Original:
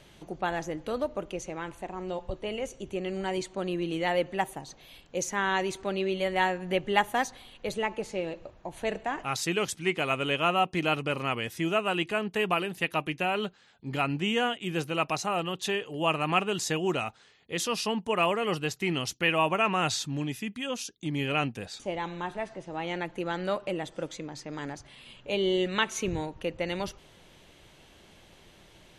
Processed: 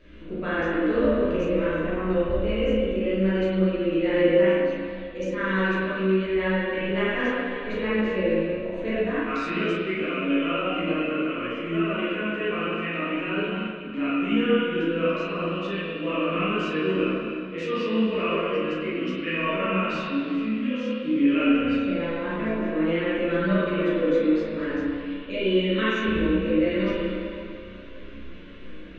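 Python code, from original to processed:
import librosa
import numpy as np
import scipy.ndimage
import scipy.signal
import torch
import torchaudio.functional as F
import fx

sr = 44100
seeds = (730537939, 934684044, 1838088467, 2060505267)

y = fx.peak_eq(x, sr, hz=400.0, db=-5.0, octaves=0.8)
y = fx.fixed_phaser(y, sr, hz=330.0, stages=4)
y = fx.doubler(y, sr, ms=36.0, db=-4.0)
y = fx.rev_spring(y, sr, rt60_s=2.3, pass_ms=(32, 42), chirp_ms=75, drr_db=-9.5)
y = fx.chorus_voices(y, sr, voices=2, hz=0.55, base_ms=15, depth_ms=4.3, mix_pct=45)
y = fx.rider(y, sr, range_db=10, speed_s=2.0)
y = fx.spacing_loss(y, sr, db_at_10k=38)
y = fx.notch(y, sr, hz=3200.0, q=19.0)
y = y * 10.0 ** (5.0 / 20.0)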